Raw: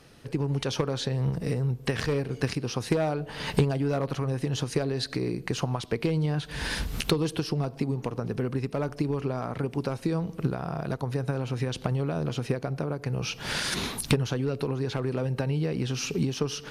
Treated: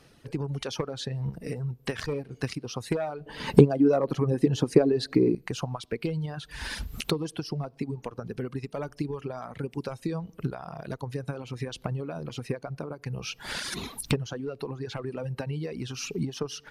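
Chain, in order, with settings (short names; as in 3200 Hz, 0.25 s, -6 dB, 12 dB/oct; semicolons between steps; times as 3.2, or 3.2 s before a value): reverb removal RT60 1.9 s; 3.26–5.35 bell 320 Hz +14 dB 2.5 oct; gain -2.5 dB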